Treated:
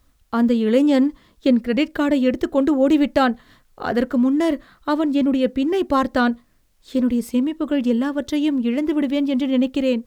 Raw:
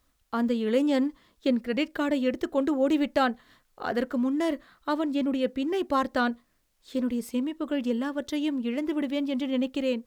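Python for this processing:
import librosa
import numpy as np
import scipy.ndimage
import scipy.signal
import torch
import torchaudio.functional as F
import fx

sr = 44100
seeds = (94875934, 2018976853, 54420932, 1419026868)

y = fx.low_shelf(x, sr, hz=240.0, db=7.5)
y = y * librosa.db_to_amplitude(5.5)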